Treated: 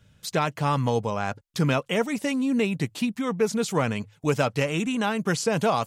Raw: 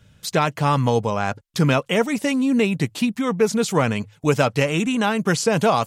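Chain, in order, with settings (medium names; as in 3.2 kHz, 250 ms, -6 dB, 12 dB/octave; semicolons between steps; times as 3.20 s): hard clipper -7 dBFS, distortion -39 dB; trim -5 dB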